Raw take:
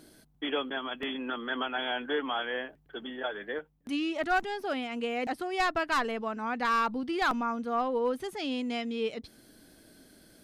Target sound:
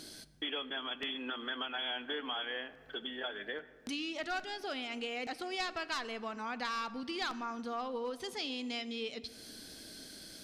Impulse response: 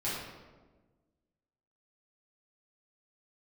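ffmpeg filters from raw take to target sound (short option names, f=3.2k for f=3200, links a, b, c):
-filter_complex "[0:a]equalizer=f=4.8k:w=0.64:g=13,acompressor=threshold=-43dB:ratio=2.5,asplit=2[a][b];[1:a]atrim=start_sample=2205,asetrate=22491,aresample=44100[c];[b][c]afir=irnorm=-1:irlink=0,volume=-24.5dB[d];[a][d]amix=inputs=2:normalize=0,volume=1dB"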